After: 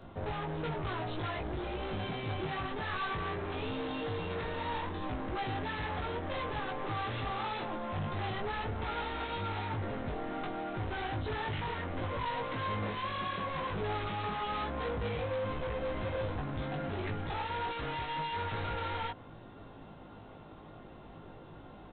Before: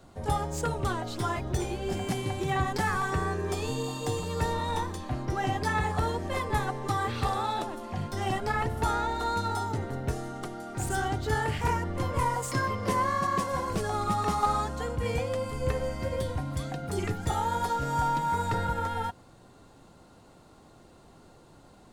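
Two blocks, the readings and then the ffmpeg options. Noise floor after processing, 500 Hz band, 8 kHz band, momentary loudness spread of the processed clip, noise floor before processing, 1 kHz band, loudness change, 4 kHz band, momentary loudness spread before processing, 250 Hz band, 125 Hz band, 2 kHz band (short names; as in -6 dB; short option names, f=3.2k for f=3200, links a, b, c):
-51 dBFS, -5.0 dB, under -40 dB, 16 LU, -55 dBFS, -7.5 dB, -6.0 dB, -2.5 dB, 6 LU, -5.5 dB, -7.0 dB, -4.0 dB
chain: -filter_complex "[0:a]alimiter=limit=-22.5dB:level=0:latency=1:release=256,aresample=8000,asoftclip=type=hard:threshold=-38.5dB,aresample=44100,asplit=2[a][b];[b]adelay=19,volume=-3dB[c];[a][c]amix=inputs=2:normalize=0,volume=2.5dB"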